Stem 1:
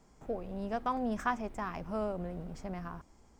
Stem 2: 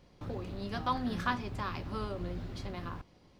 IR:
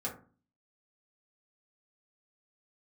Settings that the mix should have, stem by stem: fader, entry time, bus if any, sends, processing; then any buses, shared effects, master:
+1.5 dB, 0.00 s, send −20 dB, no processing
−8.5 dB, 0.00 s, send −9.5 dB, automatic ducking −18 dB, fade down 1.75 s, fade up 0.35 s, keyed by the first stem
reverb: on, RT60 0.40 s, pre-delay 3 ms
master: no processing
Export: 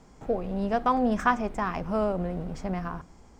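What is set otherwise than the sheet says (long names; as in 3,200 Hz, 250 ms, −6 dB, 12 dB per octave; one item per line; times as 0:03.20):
stem 1 +1.5 dB → +8.0 dB
master: extra high-shelf EQ 9,400 Hz −8.5 dB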